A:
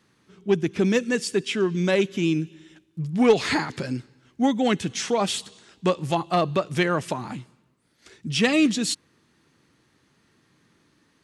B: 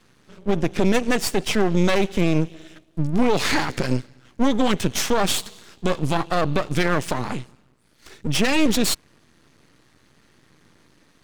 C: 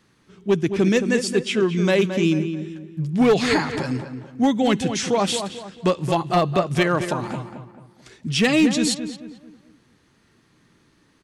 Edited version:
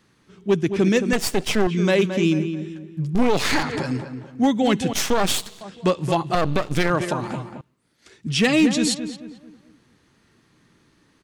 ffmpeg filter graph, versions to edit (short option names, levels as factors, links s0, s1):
-filter_complex "[1:a]asplit=4[s0][s1][s2][s3];[2:a]asplit=6[s4][s5][s6][s7][s8][s9];[s4]atrim=end=1.132[s10];[s0]atrim=start=1.128:end=1.672[s11];[s5]atrim=start=1.668:end=3.152[s12];[s1]atrim=start=3.148:end=3.632[s13];[s6]atrim=start=3.628:end=4.932[s14];[s2]atrim=start=4.928:end=5.612[s15];[s7]atrim=start=5.608:end=6.352[s16];[s3]atrim=start=6.348:end=6.902[s17];[s8]atrim=start=6.898:end=7.612[s18];[0:a]atrim=start=7.608:end=8.262[s19];[s9]atrim=start=8.258[s20];[s10][s11]acrossfade=d=0.004:c1=hsin:c2=hsin[s21];[s21][s12]acrossfade=d=0.004:c1=hsin:c2=hsin[s22];[s22][s13]acrossfade=d=0.004:c1=hsin:c2=hsin[s23];[s23][s14]acrossfade=d=0.004:c1=hsin:c2=hsin[s24];[s24][s15]acrossfade=d=0.004:c1=hsin:c2=hsin[s25];[s25][s16]acrossfade=d=0.004:c1=hsin:c2=hsin[s26];[s26][s17]acrossfade=d=0.004:c1=hsin:c2=hsin[s27];[s27][s18]acrossfade=d=0.004:c1=hsin:c2=hsin[s28];[s28][s19]acrossfade=d=0.004:c1=hsin:c2=hsin[s29];[s29][s20]acrossfade=d=0.004:c1=hsin:c2=hsin"